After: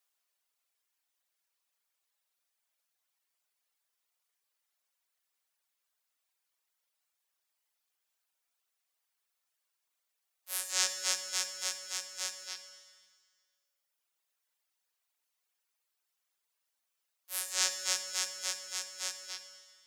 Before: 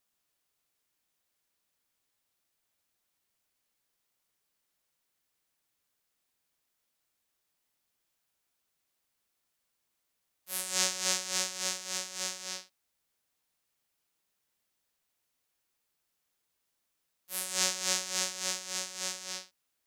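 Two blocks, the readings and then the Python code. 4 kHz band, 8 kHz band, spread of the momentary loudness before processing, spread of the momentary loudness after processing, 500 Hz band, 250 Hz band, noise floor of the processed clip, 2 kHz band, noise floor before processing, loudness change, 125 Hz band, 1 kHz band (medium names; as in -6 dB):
-1.5 dB, -2.0 dB, 11 LU, 14 LU, -6.5 dB, under -10 dB, -84 dBFS, -1.5 dB, -81 dBFS, -2.0 dB, no reading, -4.0 dB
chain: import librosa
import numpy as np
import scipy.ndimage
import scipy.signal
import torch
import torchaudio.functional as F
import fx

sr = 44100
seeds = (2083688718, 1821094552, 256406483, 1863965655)

y = scipy.signal.sosfilt(scipy.signal.butter(2, 610.0, 'highpass', fs=sr, output='sos'), x)
y = fx.dereverb_blind(y, sr, rt60_s=1.7)
y = fx.rev_schroeder(y, sr, rt60_s=1.8, comb_ms=33, drr_db=8.0)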